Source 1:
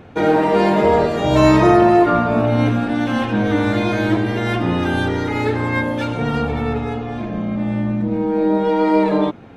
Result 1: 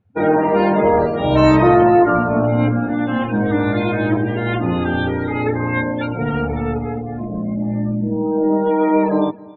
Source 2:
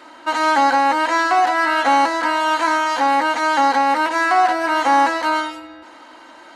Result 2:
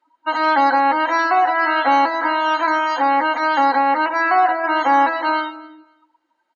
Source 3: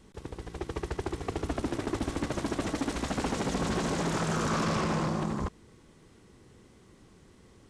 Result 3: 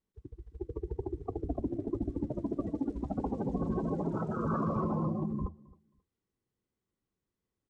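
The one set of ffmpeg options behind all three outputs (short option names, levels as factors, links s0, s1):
-af "bandreject=f=81.61:t=h:w=4,bandreject=f=163.22:t=h:w=4,bandreject=f=244.83:t=h:w=4,bandreject=f=326.44:t=h:w=4,bandreject=f=408.05:t=h:w=4,bandreject=f=489.66:t=h:w=4,afftdn=nr=32:nf=-26,aecho=1:1:267|534:0.075|0.0142"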